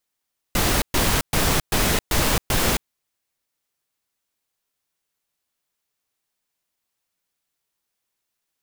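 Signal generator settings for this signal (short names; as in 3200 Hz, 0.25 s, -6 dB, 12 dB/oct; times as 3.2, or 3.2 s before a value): noise bursts pink, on 0.27 s, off 0.12 s, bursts 6, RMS -19.5 dBFS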